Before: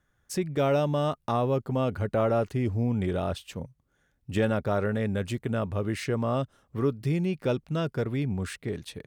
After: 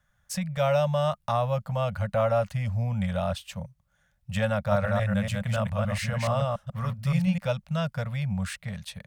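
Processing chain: 4.57–7.38 s: chunks repeated in reverse 142 ms, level -2 dB; Chebyshev band-stop 200–560 Hz, order 3; trim +2.5 dB

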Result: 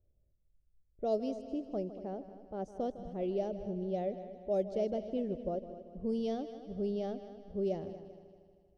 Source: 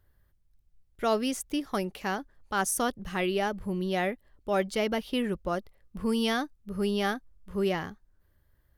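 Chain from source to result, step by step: FFT filter 310 Hz 0 dB, 630 Hz +5 dB, 1 kHz -18 dB, 1.6 kHz -23 dB, 6.2 kHz -2 dB, 13 kHz -13 dB; level-controlled noise filter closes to 760 Hz, open at -18 dBFS; multi-head delay 78 ms, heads second and third, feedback 51%, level -14 dB; trim -7 dB

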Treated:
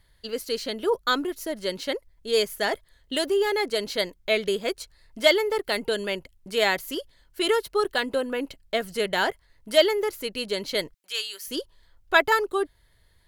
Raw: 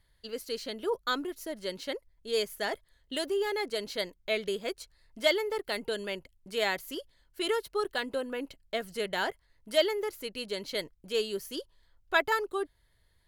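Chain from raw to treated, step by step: 10.94–11.48 s: high-pass 1.5 kHz 12 dB/octave; trim +7 dB

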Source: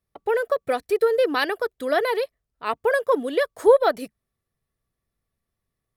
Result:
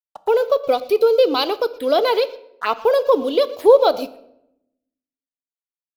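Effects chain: 2.06–2.83 s: peaking EQ 1.7 kHz +10 dB 0.84 oct; delay 118 ms -20.5 dB; in parallel at -2 dB: peak limiter -14.5 dBFS, peak gain reduction 10 dB; on the sum: crossover distortion -42.5 dBFS; touch-sensitive phaser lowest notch 310 Hz, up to 1.8 kHz, full sweep at -20.5 dBFS; bass shelf 310 Hz -9.5 dB; on a send at -14 dB: reverberation RT60 0.80 s, pre-delay 4 ms; on the sum: trim +5 dB

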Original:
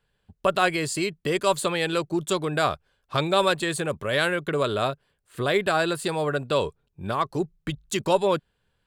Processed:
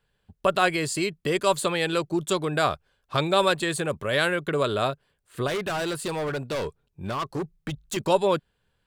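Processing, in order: 5.47–7.97 s: hard clipper -25.5 dBFS, distortion -12 dB

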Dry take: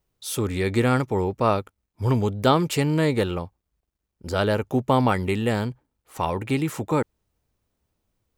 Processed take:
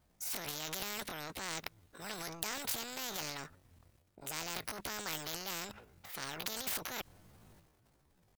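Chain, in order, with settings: transient shaper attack -3 dB, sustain +12 dB; pitch shift +8.5 st; spectrum-flattening compressor 4:1; trim -8 dB

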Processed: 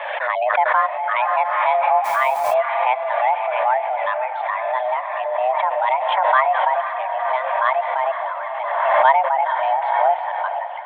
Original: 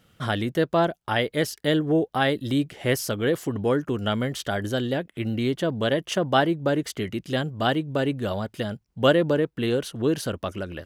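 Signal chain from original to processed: chunks repeated in reverse 404 ms, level -10 dB; distance through air 470 m; mistuned SSB +380 Hz 230–2600 Hz; reverb removal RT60 1.8 s; echo that smears into a reverb 497 ms, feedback 56%, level -9 dB; 2.04–2.54 s: word length cut 8-bit, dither none; 5.24–5.87 s: tilt EQ -2 dB/octave; 7.93–9.05 s: transient shaper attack -5 dB, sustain +1 dB; swell ahead of each attack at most 31 dB/s; trim +6 dB

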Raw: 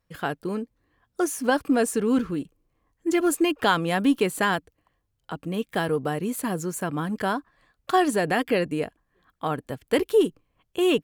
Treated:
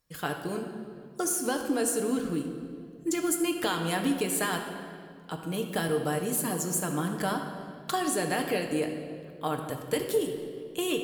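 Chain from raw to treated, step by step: tone controls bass -1 dB, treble +11 dB; compression, threshold -22 dBFS, peak gain reduction 9 dB; reverberation RT60 2.4 s, pre-delay 7 ms, DRR 2.5 dB; trim -4 dB

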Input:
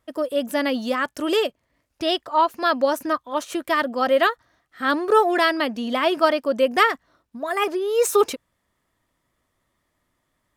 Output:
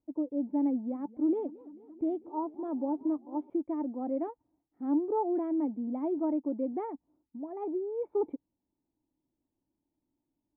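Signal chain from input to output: cascade formant filter u; 0.73–3.50 s: modulated delay 220 ms, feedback 74%, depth 205 cents, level -21 dB

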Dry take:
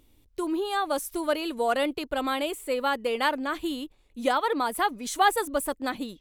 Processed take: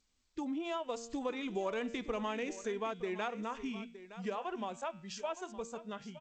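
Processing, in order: Doppler pass-by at 1.92 s, 9 m/s, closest 7.3 m; spectral noise reduction 13 dB; de-hum 141.8 Hz, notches 34; compression 4:1, threshold -36 dBFS, peak gain reduction 12.5 dB; pitch shift -3.5 st; delay 916 ms -14.5 dB; trim +1 dB; G.722 64 kbps 16 kHz

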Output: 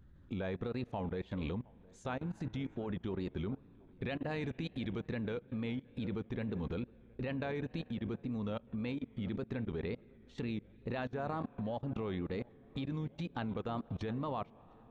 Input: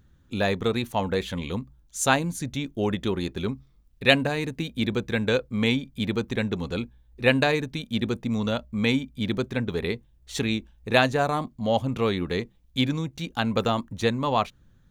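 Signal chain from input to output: on a send at -22 dB: reverberation RT60 2.6 s, pre-delay 37 ms; on the sum: compression 10:1, threshold -34 dBFS, peak gain reduction 21.5 dB; tape spacing loss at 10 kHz 28 dB; wow and flutter 95 cents; 4.31–5.04 s: treble shelf 2.3 kHz +6.5 dB; filtered feedback delay 716 ms, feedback 79%, low-pass 1.4 kHz, level -17.5 dB; level held to a coarse grid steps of 22 dB; 2.26–2.89 s: de-hum 107.4 Hz, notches 23; trim +7 dB

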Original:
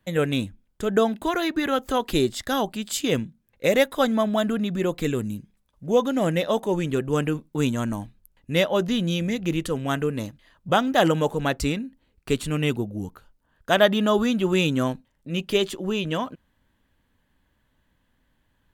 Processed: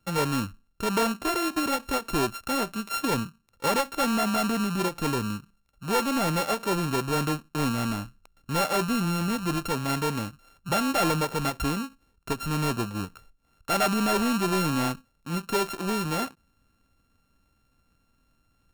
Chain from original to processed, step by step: sorted samples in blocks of 32 samples; saturation -19.5 dBFS, distortion -10 dB; endings held to a fixed fall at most 340 dB/s

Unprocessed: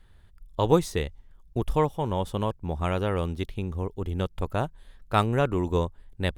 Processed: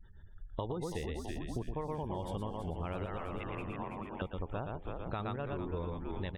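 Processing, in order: spectral gate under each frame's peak -30 dB strong; 3.06–4.22 s: elliptic band-pass 640–2700 Hz; delay 116 ms -5.5 dB; peak limiter -15 dBFS, peak gain reduction 9.5 dB; frequency-shifting echo 329 ms, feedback 60%, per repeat -100 Hz, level -9 dB; 5.36–5.85 s: expander -24 dBFS; compression 6:1, threshold -35 dBFS, peak gain reduction 14 dB

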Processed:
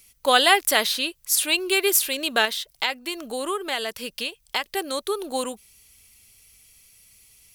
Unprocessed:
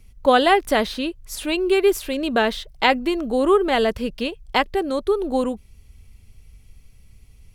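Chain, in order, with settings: tilt EQ +4.5 dB/octave; 2.45–4.64 s: compression 2:1, threshold -27 dBFS, peak gain reduction 10.5 dB; trim -1.5 dB

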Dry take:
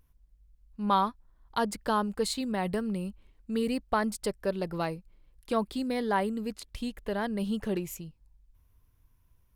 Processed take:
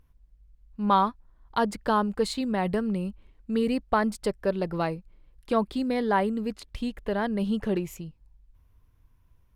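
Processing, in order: treble shelf 5.3 kHz -10.5 dB; trim +4 dB

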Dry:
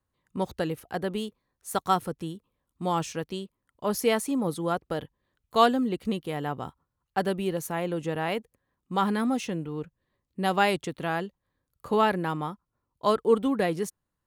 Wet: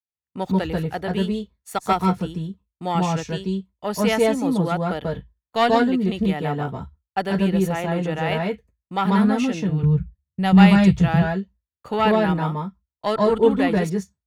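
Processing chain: single-diode clipper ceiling -12.5 dBFS; expander -44 dBFS; 9.69–11.08 s: resonant low shelf 200 Hz +13.5 dB, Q 1.5; reverberation RT60 0.10 s, pre-delay 137 ms, DRR 3 dB; trim -2 dB

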